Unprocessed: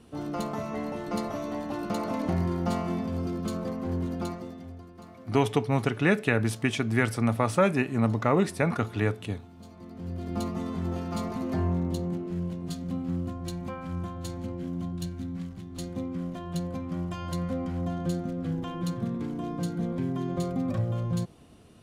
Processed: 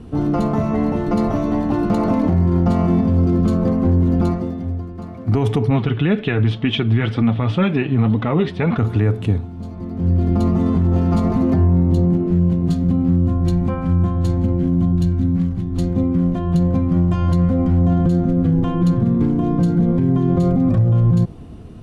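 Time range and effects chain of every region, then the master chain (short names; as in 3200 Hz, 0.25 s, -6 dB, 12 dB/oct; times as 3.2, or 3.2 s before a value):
5.7–8.78 flange 2 Hz, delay 3.3 ms, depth 4.6 ms, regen +37% + synth low-pass 3300 Hz, resonance Q 5
whole clip: tilt -3 dB/oct; notch 570 Hz, Q 12; maximiser +17.5 dB; gain -7.5 dB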